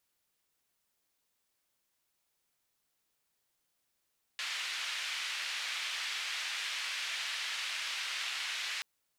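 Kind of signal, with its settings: noise band 2200–2800 Hz, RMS -37.5 dBFS 4.43 s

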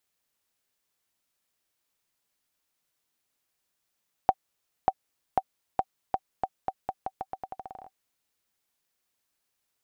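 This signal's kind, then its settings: bouncing ball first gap 0.59 s, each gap 0.84, 765 Hz, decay 50 ms -8 dBFS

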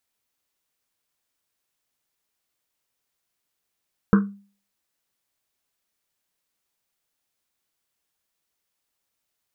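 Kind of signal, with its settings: Risset drum, pitch 200 Hz, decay 0.41 s, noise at 1300 Hz, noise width 470 Hz, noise 15%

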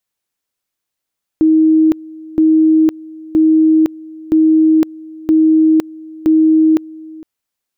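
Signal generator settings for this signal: two-level tone 316 Hz -6.5 dBFS, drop 22.5 dB, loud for 0.51 s, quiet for 0.46 s, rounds 6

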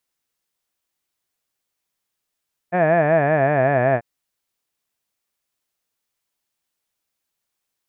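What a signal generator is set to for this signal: formant-synthesis vowel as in had, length 1.29 s, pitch 171 Hz, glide -5.5 st, vibrato depth 1.3 st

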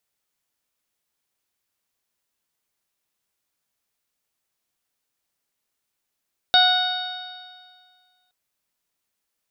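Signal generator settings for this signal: stretched partials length 1.77 s, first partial 732 Hz, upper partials -2/-17.5/-12/4/-9.5/-20 dB, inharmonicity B 0.0014, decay 1.85 s, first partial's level -17 dB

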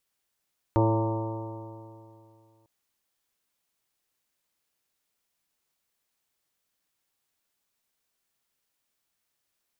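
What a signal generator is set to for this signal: stretched partials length 1.90 s, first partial 110 Hz, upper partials -16.5/-1/-9.5/-5/-13.5/-15/-5/-19/-17.5 dB, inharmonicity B 0.0013, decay 2.56 s, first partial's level -21.5 dB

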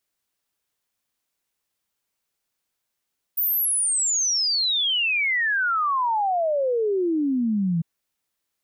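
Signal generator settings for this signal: log sweep 15000 Hz -> 160 Hz 4.45 s -19.5 dBFS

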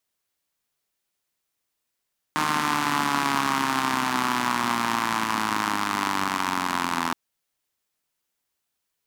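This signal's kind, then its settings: four-cylinder engine model, changing speed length 4.77 s, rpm 4600, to 2500, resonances 260/1000 Hz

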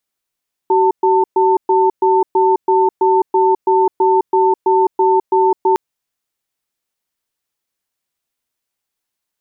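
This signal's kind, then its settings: cadence 379 Hz, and 895 Hz, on 0.21 s, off 0.12 s, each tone -12 dBFS 5.06 s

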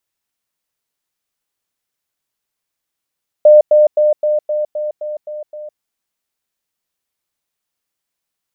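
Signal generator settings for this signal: level ladder 603 Hz -2.5 dBFS, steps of -3 dB, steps 9, 0.16 s 0.10 s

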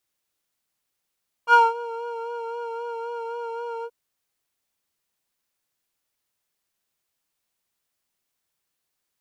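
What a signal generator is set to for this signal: synth patch with vibrato A#5, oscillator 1 triangle, interval +7 st, detune 11 cents, oscillator 2 level -2 dB, sub -3 dB, noise -21 dB, filter bandpass, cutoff 360 Hz, Q 2.3, filter envelope 2 oct, attack 64 ms, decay 0.20 s, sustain -17.5 dB, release 0.06 s, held 2.37 s, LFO 3.8 Hz, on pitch 32 cents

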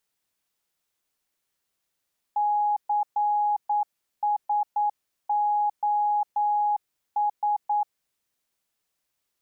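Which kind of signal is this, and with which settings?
Morse "CSOS" 9 wpm 832 Hz -20.5 dBFS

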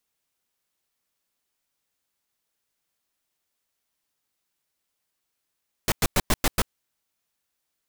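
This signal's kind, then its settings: noise bursts pink, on 0.04 s, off 0.10 s, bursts 6, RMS -20 dBFS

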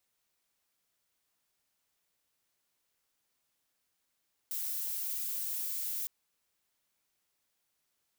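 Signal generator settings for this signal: noise violet, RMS -36 dBFS 1.56 s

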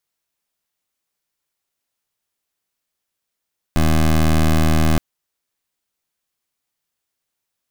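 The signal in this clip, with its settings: pulse 78.9 Hz, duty 17% -14 dBFS 1.22 s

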